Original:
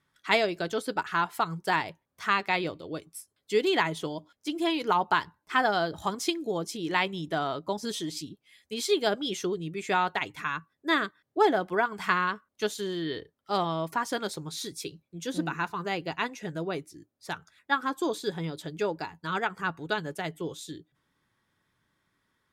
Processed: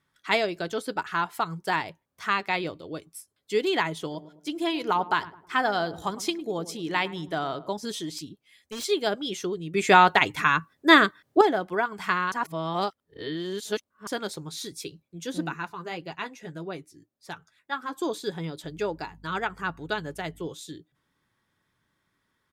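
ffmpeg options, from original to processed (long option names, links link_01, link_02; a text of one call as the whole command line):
ffmpeg -i in.wav -filter_complex "[0:a]asplit=3[link_01][link_02][link_03];[link_01]afade=type=out:start_time=4.1:duration=0.02[link_04];[link_02]asplit=2[link_05][link_06];[link_06]adelay=106,lowpass=frequency=910:poles=1,volume=-14dB,asplit=2[link_07][link_08];[link_08]adelay=106,lowpass=frequency=910:poles=1,volume=0.49,asplit=2[link_09][link_10];[link_10]adelay=106,lowpass=frequency=910:poles=1,volume=0.49,asplit=2[link_11][link_12];[link_12]adelay=106,lowpass=frequency=910:poles=1,volume=0.49,asplit=2[link_13][link_14];[link_14]adelay=106,lowpass=frequency=910:poles=1,volume=0.49[link_15];[link_05][link_07][link_09][link_11][link_13][link_15]amix=inputs=6:normalize=0,afade=type=in:start_time=4.1:duration=0.02,afade=type=out:start_time=7.68:duration=0.02[link_16];[link_03]afade=type=in:start_time=7.68:duration=0.02[link_17];[link_04][link_16][link_17]amix=inputs=3:normalize=0,asettb=1/sr,asplit=3[link_18][link_19][link_20];[link_18]atrim=end=8.184[link_21];[link_19]atrim=start=8.18:end=8.84,asetpts=PTS-STARTPTS,afade=type=in:duration=0.004:curve=qsin,afade=type=out:start_time=0.656:duration=0.004:curve=qsin,aeval=exprs='0.0355*(abs(mod(val(0)/0.0355+3,4)-2)-1)':channel_layout=same[link_22];[link_20]atrim=start=8.836[link_23];[link_21][link_22]acrossfade=duration=0.004:curve1=hsin:curve2=qsin[link_24];[link_24][link_23]acrossfade=duration=0.004:curve1=qsin:curve2=hsin,asplit=3[link_25][link_26][link_27];[link_25]afade=type=out:start_time=15.53:duration=0.02[link_28];[link_26]flanger=delay=4.9:depth=2.9:regen=-45:speed=1.8:shape=sinusoidal,afade=type=in:start_time=15.53:duration=0.02,afade=type=out:start_time=17.92:duration=0.02[link_29];[link_27]afade=type=in:start_time=17.92:duration=0.02[link_30];[link_28][link_29][link_30]amix=inputs=3:normalize=0,asettb=1/sr,asplit=3[link_31][link_32][link_33];[link_31]atrim=end=18.644[link_34];[link_32]atrim=start=18.64:end=20.47,asetpts=PTS-STARTPTS,afade=type=in:duration=0.004:curve=qsin,afade=type=out:start_time=1.826:duration=0.004:curve=qsin,aeval=exprs='val(0)+0.00251*(sin(2*PI*50*n/s)+sin(2*PI*2*50*n/s)/2+sin(2*PI*3*50*n/s)/3+sin(2*PI*4*50*n/s)/4+sin(2*PI*5*50*n/s)/5)':channel_layout=same[link_35];[link_33]atrim=start=20.466[link_36];[link_34][link_35]acrossfade=duration=0.004:curve1=hsin:curve2=qsin[link_37];[link_37][link_36]acrossfade=duration=0.004:curve1=qsin:curve2=hsin,asplit=5[link_38][link_39][link_40][link_41][link_42];[link_38]atrim=end=9.742[link_43];[link_39]atrim=start=9.738:end=11.412,asetpts=PTS-STARTPTS,volume=10dB[link_44];[link_40]atrim=start=11.408:end=12.322[link_45];[link_41]atrim=start=12.318:end=14.072,asetpts=PTS-STARTPTS,areverse[link_46];[link_42]atrim=start=14.068[link_47];[link_43][link_44]acrossfade=duration=0.004:curve1=hsin:curve2=hsin[link_48];[link_48][link_45]acrossfade=duration=0.004:curve1=hsin:curve2=hsin[link_49];[link_49][link_46]acrossfade=duration=0.004:curve1=hsin:curve2=hsin[link_50];[link_50][link_47]acrossfade=duration=0.004:curve1=hsin:curve2=hsin" out.wav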